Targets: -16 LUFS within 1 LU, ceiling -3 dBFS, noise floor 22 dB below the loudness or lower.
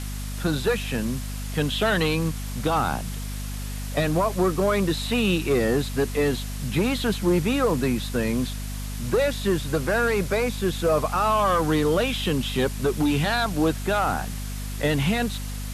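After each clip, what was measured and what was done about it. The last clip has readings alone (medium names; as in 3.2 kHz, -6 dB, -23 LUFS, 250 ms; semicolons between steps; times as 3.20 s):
hum 50 Hz; highest harmonic 250 Hz; hum level -29 dBFS; noise floor -31 dBFS; noise floor target -47 dBFS; loudness -24.5 LUFS; peak level -11.0 dBFS; loudness target -16.0 LUFS
-> hum notches 50/100/150/200/250 Hz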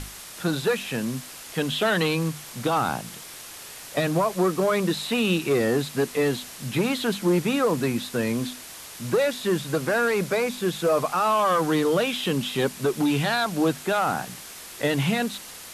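hum not found; noise floor -41 dBFS; noise floor target -47 dBFS
-> noise reduction 6 dB, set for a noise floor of -41 dBFS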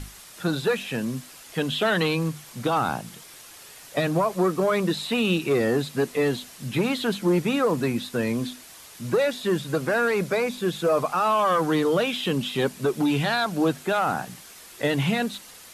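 noise floor -46 dBFS; noise floor target -47 dBFS
-> noise reduction 6 dB, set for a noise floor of -46 dBFS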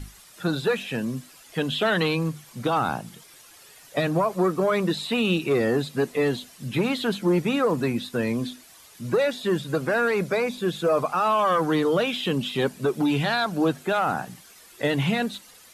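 noise floor -50 dBFS; loudness -24.5 LUFS; peak level -12.0 dBFS; loudness target -16.0 LUFS
-> trim +8.5 dB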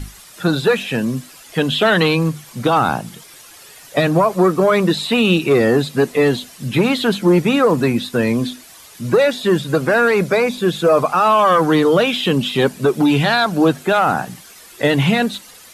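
loudness -16.0 LUFS; peak level -3.5 dBFS; noise floor -42 dBFS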